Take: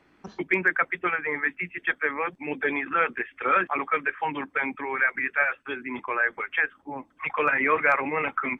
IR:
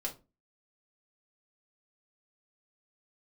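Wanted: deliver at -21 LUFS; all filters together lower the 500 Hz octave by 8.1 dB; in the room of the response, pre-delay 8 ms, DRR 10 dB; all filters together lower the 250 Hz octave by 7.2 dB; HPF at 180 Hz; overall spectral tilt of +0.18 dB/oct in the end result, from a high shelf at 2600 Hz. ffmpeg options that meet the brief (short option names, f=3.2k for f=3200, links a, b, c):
-filter_complex "[0:a]highpass=180,equalizer=f=250:t=o:g=-5,equalizer=f=500:t=o:g=-8.5,highshelf=f=2.6k:g=6.5,asplit=2[a][b];[1:a]atrim=start_sample=2205,adelay=8[c];[b][c]afir=irnorm=-1:irlink=0,volume=-11dB[d];[a][d]amix=inputs=2:normalize=0,volume=3.5dB"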